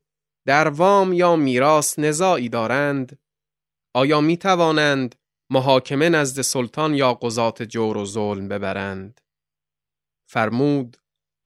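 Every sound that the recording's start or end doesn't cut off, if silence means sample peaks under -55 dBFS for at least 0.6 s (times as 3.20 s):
3.95–9.19 s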